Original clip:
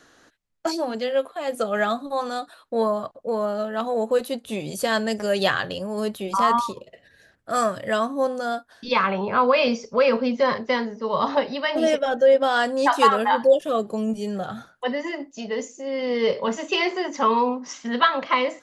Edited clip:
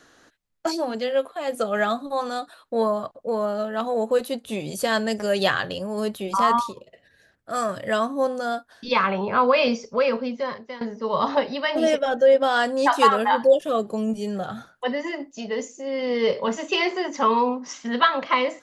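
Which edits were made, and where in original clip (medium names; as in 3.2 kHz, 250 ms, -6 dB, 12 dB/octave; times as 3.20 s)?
6.63–7.69 s: gain -3.5 dB
9.71–10.81 s: fade out, to -17 dB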